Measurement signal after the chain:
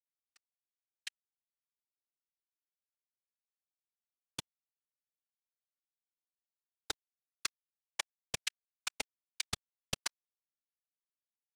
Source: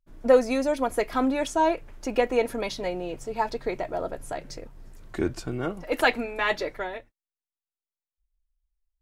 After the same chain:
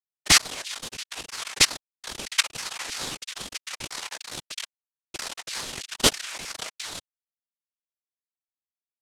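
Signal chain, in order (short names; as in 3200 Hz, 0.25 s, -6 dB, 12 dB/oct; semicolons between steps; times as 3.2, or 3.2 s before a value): dynamic EQ 530 Hz, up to -5 dB, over -36 dBFS, Q 6.4; level quantiser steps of 20 dB; bit-crush 6-bit; added harmonics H 5 -13 dB, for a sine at -9.5 dBFS; noise vocoder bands 1; LFO high-pass saw down 3.1 Hz 990–3700 Hz; ring modulator with a swept carrier 1100 Hz, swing 60%, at 2.3 Hz; gain +2 dB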